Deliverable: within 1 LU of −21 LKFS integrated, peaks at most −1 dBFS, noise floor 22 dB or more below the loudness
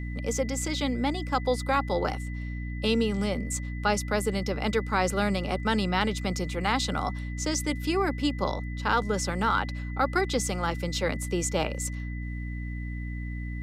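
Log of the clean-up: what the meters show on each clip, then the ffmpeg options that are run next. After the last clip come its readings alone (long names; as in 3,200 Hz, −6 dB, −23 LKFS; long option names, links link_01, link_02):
mains hum 60 Hz; hum harmonics up to 300 Hz; level of the hum −31 dBFS; interfering tone 2,000 Hz; level of the tone −44 dBFS; integrated loudness −28.5 LKFS; sample peak −11.5 dBFS; target loudness −21.0 LKFS
→ -af "bandreject=frequency=60:width_type=h:width=4,bandreject=frequency=120:width_type=h:width=4,bandreject=frequency=180:width_type=h:width=4,bandreject=frequency=240:width_type=h:width=4,bandreject=frequency=300:width_type=h:width=4"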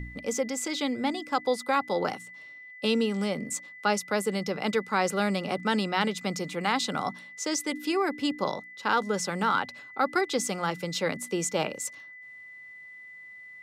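mains hum none found; interfering tone 2,000 Hz; level of the tone −44 dBFS
→ -af "bandreject=frequency=2000:width=30"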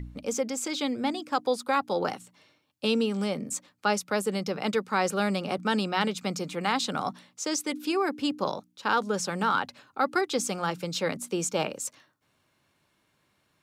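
interfering tone none found; integrated loudness −29.0 LKFS; sample peak −13.0 dBFS; target loudness −21.0 LKFS
→ -af "volume=8dB"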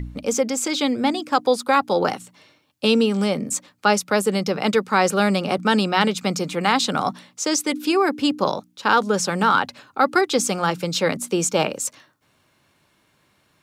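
integrated loudness −21.0 LKFS; sample peak −5.0 dBFS; background noise floor −64 dBFS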